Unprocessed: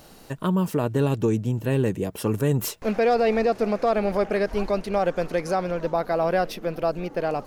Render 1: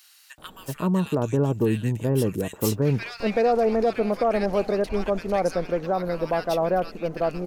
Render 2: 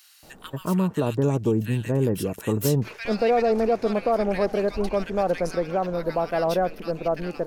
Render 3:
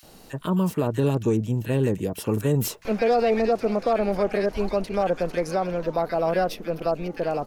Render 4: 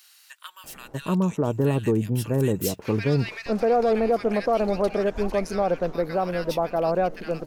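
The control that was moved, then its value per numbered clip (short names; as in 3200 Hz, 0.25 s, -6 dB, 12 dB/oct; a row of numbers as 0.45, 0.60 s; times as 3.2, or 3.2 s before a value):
bands offset in time, time: 380, 230, 30, 640 ms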